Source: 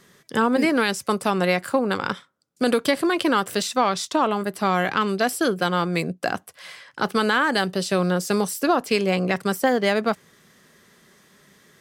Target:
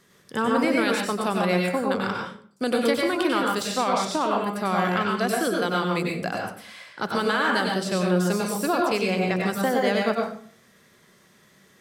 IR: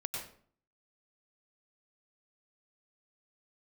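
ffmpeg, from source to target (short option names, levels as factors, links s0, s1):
-filter_complex "[1:a]atrim=start_sample=2205[s0];[0:a][s0]afir=irnorm=-1:irlink=0,volume=0.708"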